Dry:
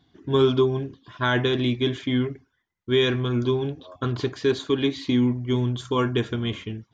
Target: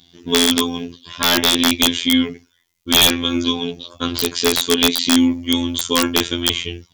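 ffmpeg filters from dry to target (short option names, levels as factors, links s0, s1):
-af "aexciter=amount=5.7:drive=1.5:freq=2300,afftfilt=real='hypot(re,im)*cos(PI*b)':imag='0':win_size=2048:overlap=0.75,aeval=exprs='(mod(2.99*val(0)+1,2)-1)/2.99':c=same,volume=2.66"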